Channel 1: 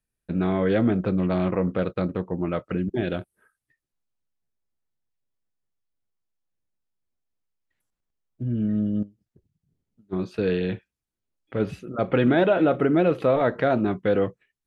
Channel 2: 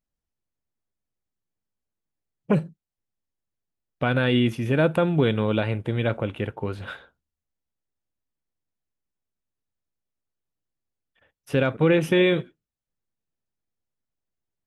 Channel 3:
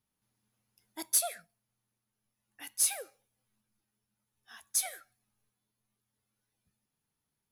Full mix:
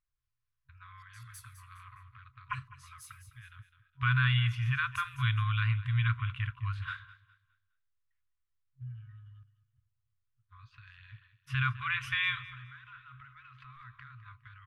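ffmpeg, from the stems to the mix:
-filter_complex "[0:a]acrossover=split=270|1200[a][b][c];[a]acompressor=threshold=-30dB:ratio=4[d];[b]acompressor=threshold=-24dB:ratio=4[e];[c]acompressor=threshold=-35dB:ratio=4[f];[d][e][f]amix=inputs=3:normalize=0,adelay=400,volume=-8.5dB,asplit=2[g][h];[h]volume=-19dB[i];[1:a]highshelf=f=7k:g=-11.5,volume=-0.5dB,asplit=3[j][k][l];[k]volume=-18dB[m];[2:a]volume=-11dB,asplit=2[n][o];[o]volume=-8dB[p];[l]apad=whole_len=331430[q];[n][q]sidechaincompress=threshold=-36dB:ratio=8:attack=16:release=203[r];[g][r]amix=inputs=2:normalize=0,adynamicsmooth=sensitivity=2.5:basefreq=4.4k,alimiter=level_in=8dB:limit=-24dB:level=0:latency=1:release=81,volume=-8dB,volume=0dB[s];[i][m][p]amix=inputs=3:normalize=0,aecho=0:1:206|412|618|824:1|0.31|0.0961|0.0298[t];[j][s][t]amix=inputs=3:normalize=0,afftfilt=real='re*(1-between(b*sr/4096,130,990))':imag='im*(1-between(b*sr/4096,130,990))':win_size=4096:overlap=0.75,highshelf=f=4.8k:g=-7.5"

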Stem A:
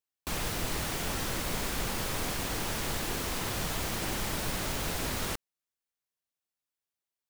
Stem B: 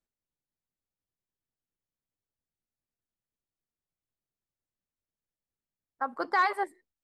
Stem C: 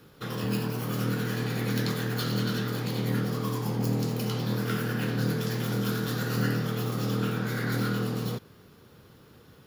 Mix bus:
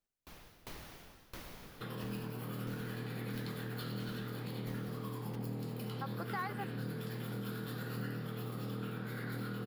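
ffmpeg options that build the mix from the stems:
-filter_complex "[0:a]equalizer=f=8k:t=o:w=0.63:g=-8.5,aeval=exprs='val(0)*pow(10,-25*if(lt(mod(1.5*n/s,1),2*abs(1.5)/1000),1-mod(1.5*n/s,1)/(2*abs(1.5)/1000),(mod(1.5*n/s,1)-2*abs(1.5)/1000)/(1-2*abs(1.5)/1000))/20)':c=same,volume=-7.5dB[a];[1:a]volume=-1dB[b];[2:a]equalizer=f=6.1k:t=o:w=0.37:g=-15,adelay=1600,volume=-1.5dB[c];[a][b][c]amix=inputs=3:normalize=0,acompressor=threshold=-47dB:ratio=2"

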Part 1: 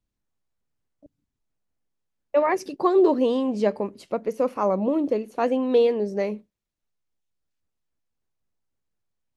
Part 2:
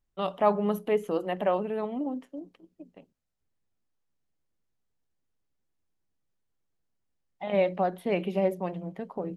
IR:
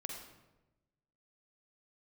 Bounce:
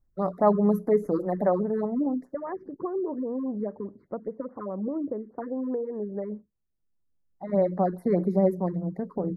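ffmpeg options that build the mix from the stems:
-filter_complex "[0:a]lowpass=f=1.8k:w=0.5412,lowpass=f=1.8k:w=1.3066,acompressor=threshold=-22dB:ratio=6,volume=-8.5dB,asplit=2[a][b];[1:a]equalizer=f=6.5k:t=o:w=2.9:g=-8,volume=1dB[c];[b]apad=whole_len=413034[d];[c][d]sidechaincompress=threshold=-47dB:ratio=8:attack=9:release=1300[e];[a][e]amix=inputs=2:normalize=0,asuperstop=centerf=2900:order=8:qfactor=1.4,lowshelf=f=320:g=8.5,afftfilt=real='re*(1-between(b*sr/1024,630*pow(3400/630,0.5+0.5*sin(2*PI*4.9*pts/sr))/1.41,630*pow(3400/630,0.5+0.5*sin(2*PI*4.9*pts/sr))*1.41))':imag='im*(1-between(b*sr/1024,630*pow(3400/630,0.5+0.5*sin(2*PI*4.9*pts/sr))/1.41,630*pow(3400/630,0.5+0.5*sin(2*PI*4.9*pts/sr))*1.41))':win_size=1024:overlap=0.75"

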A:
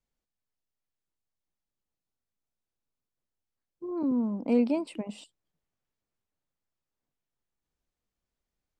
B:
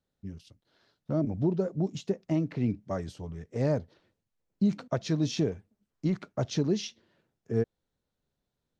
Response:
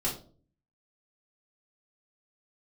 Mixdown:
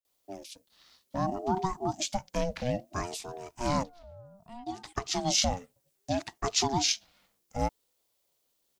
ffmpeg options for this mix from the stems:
-filter_complex "[0:a]crystalizer=i=5:c=0,volume=-19.5dB,asplit=2[a][b];[1:a]crystalizer=i=8:c=0,adelay=50,volume=0dB[c];[b]apad=whole_len=390144[d];[c][d]sidechaincompress=threshold=-57dB:ratio=8:attack=16:release=102[e];[a][e]amix=inputs=2:normalize=0,aeval=exprs='val(0)*sin(2*PI*450*n/s+450*0.25/0.61*sin(2*PI*0.61*n/s))':c=same"

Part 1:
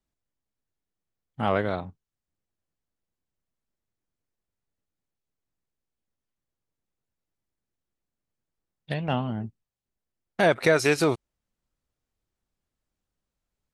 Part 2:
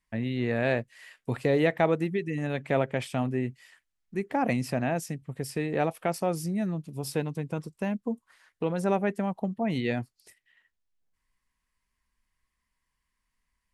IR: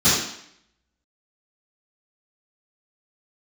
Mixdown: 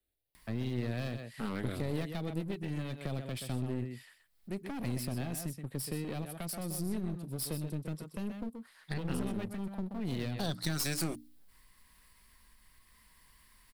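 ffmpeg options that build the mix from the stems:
-filter_complex "[0:a]bandreject=f=60:t=h:w=6,bandreject=f=120:t=h:w=6,bandreject=f=180:t=h:w=6,bandreject=f=240:t=h:w=6,bandreject=f=300:t=h:w=6,asplit=2[a][b];[b]afreqshift=0.52[c];[a][c]amix=inputs=2:normalize=1,volume=0.5dB[d];[1:a]acompressor=mode=upward:threshold=-44dB:ratio=2.5,adelay=350,volume=-2.5dB,asplit=2[e][f];[f]volume=-10dB,aecho=0:1:127:1[g];[d][e][g]amix=inputs=3:normalize=0,acrossover=split=260|3000[h][i][j];[i]acompressor=threshold=-41dB:ratio=6[k];[h][k][j]amix=inputs=3:normalize=0,aeval=exprs='clip(val(0),-1,0.00891)':c=same,aexciter=amount=1.7:drive=2.1:freq=3.6k"

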